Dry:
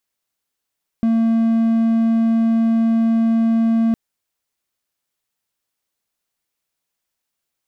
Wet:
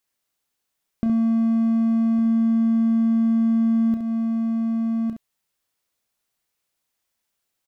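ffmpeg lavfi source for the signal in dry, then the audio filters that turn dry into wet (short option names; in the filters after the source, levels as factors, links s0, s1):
-f lavfi -i "aevalsrc='0.282*(1-4*abs(mod(227*t+0.25,1)-0.5))':d=2.91:s=44100"
-filter_complex "[0:a]asplit=2[s0][s1];[s1]aecho=0:1:1158:0.316[s2];[s0][s2]amix=inputs=2:normalize=0,acompressor=threshold=0.0891:ratio=6,asplit=2[s3][s4];[s4]aecho=0:1:31|67:0.282|0.447[s5];[s3][s5]amix=inputs=2:normalize=0"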